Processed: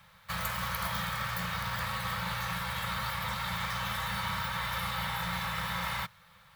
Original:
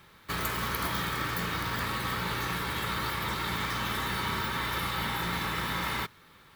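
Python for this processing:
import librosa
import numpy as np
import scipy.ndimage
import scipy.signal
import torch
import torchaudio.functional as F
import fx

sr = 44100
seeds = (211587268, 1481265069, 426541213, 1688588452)

y = scipy.signal.sosfilt(scipy.signal.cheby1(4, 1.0, [200.0, 500.0], 'bandstop', fs=sr, output='sos'), x)
y = y * librosa.db_to_amplitude(-1.5)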